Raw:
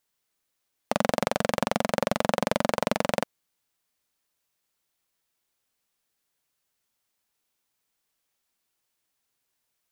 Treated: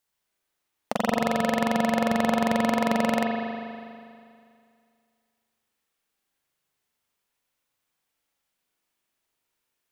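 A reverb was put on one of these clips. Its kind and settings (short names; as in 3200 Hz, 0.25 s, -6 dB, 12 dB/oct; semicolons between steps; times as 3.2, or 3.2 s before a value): spring tank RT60 2.3 s, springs 40 ms, chirp 60 ms, DRR -2 dB; gain -2.5 dB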